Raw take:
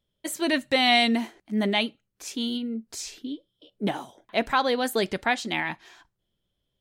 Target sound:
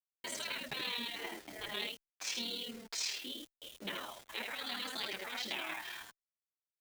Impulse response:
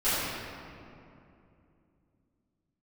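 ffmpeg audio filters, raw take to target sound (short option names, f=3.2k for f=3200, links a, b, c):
-filter_complex "[0:a]acompressor=threshold=-30dB:ratio=12,asetnsamples=n=441:p=0,asendcmd='1.6 highpass f 790',highpass=250,lowpass=3.3k,alimiter=level_in=6dB:limit=-24dB:level=0:latency=1:release=15,volume=-6dB,aecho=1:1:41|78:0.158|0.447,afftfilt=real='re*lt(hypot(re,im),0.0251)':imag='im*lt(hypot(re,im),0.0251)':win_size=1024:overlap=0.75,acrusher=bits=9:mix=0:aa=0.000001,tremolo=f=38:d=0.788,equalizer=f=1.1k:w=0.5:g=-5.5,asplit=2[a][b];[b]adelay=8.9,afreqshift=-3[c];[a][c]amix=inputs=2:normalize=1,volume=16.5dB"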